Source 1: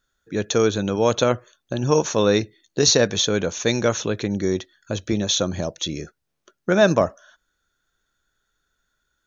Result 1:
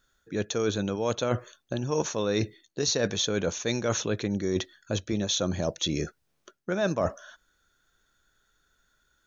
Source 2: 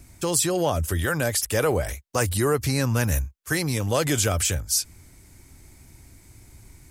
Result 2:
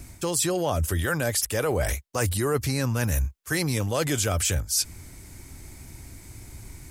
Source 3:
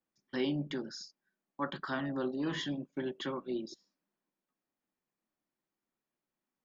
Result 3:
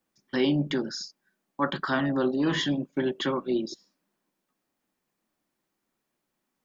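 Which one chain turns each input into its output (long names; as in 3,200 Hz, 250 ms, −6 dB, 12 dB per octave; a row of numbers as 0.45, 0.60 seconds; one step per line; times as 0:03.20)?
reversed playback
downward compressor 6 to 1, threshold −28 dBFS
reversed playback
normalise the peak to −12 dBFS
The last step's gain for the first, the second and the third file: +3.5, +6.0, +9.5 decibels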